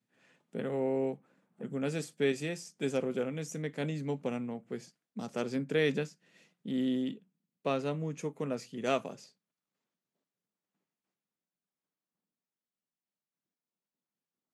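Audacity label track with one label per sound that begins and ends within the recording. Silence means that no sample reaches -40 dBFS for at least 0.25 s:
0.550000	1.140000	sound
1.610000	4.820000	sound
5.170000	6.080000	sound
6.660000	7.140000	sound
7.660000	9.140000	sound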